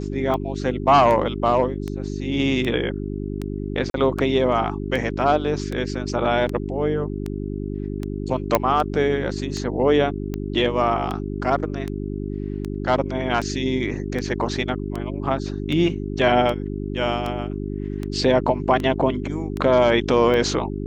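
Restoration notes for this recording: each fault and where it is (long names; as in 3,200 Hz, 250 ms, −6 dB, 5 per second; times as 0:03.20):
mains hum 50 Hz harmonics 8 −28 dBFS
scratch tick 78 rpm −15 dBFS
0:03.90–0:03.94: drop-out 42 ms
0:08.55: click −3 dBFS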